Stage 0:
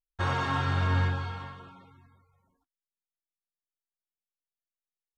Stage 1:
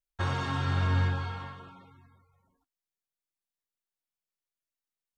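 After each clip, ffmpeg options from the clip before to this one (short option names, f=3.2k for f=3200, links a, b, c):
-filter_complex "[0:a]acrossover=split=370|3000[a][b][c];[b]acompressor=threshold=-33dB:ratio=6[d];[a][d][c]amix=inputs=3:normalize=0"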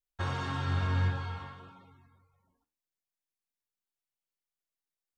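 -af "flanger=delay=8.6:depth=5.3:regen=83:speed=1.7:shape=triangular,volume=1.5dB"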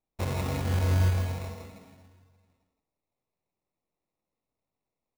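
-af "acrusher=samples=28:mix=1:aa=0.000001,aecho=1:1:164:0.501,volume=2.5dB"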